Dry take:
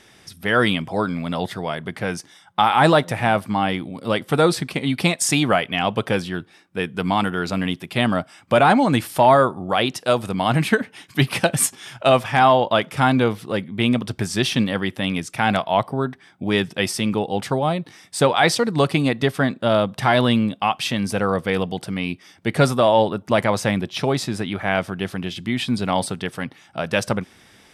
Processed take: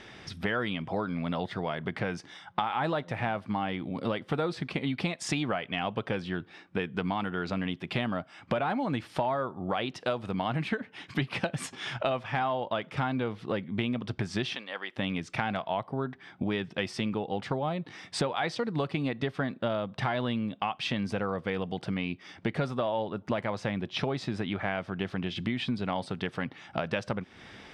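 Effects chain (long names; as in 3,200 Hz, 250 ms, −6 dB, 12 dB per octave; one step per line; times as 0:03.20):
low-pass filter 3,800 Hz 12 dB per octave
downward compressor 6 to 1, threshold −32 dBFS, peak gain reduction 20.5 dB
0:14.55–0:14.96: high-pass filter 650 Hz 12 dB per octave
level +3.5 dB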